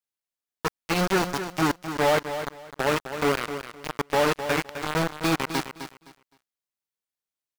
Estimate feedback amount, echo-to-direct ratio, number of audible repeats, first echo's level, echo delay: 22%, -10.0 dB, 2, -10.0 dB, 0.258 s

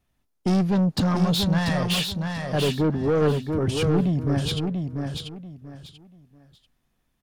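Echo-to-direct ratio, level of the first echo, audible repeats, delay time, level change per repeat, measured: -4.5 dB, -5.0 dB, 3, 0.688 s, -12.0 dB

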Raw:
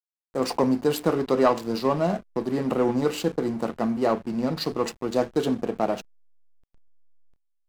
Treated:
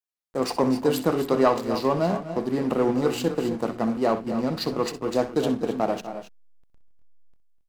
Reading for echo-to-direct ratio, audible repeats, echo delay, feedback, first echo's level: -8.5 dB, 2, 63 ms, no steady repeat, -13.5 dB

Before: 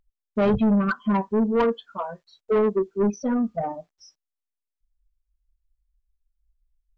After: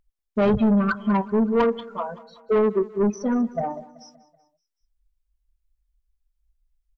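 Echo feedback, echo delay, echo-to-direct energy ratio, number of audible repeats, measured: 53%, 0.19 s, -18.0 dB, 3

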